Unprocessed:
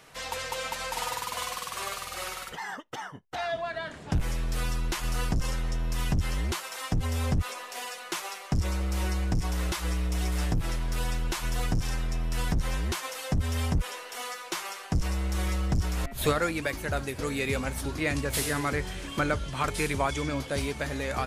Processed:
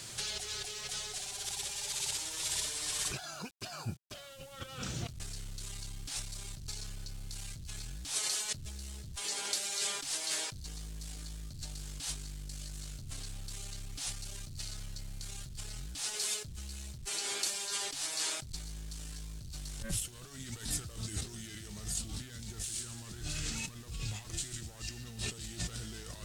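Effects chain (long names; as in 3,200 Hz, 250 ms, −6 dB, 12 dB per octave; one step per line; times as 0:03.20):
low-shelf EQ 60 Hz −7.5 dB
asymmetric clip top −31.5 dBFS
compressor whose output falls as the input rises −42 dBFS, ratio −1
bit-depth reduction 10 bits, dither none
change of speed 0.81×
octave-band graphic EQ 125/250/500/1,000/2,000/4,000/8,000 Hz +3/−5/−8/−11/−6/+4/+8 dB
level +1.5 dB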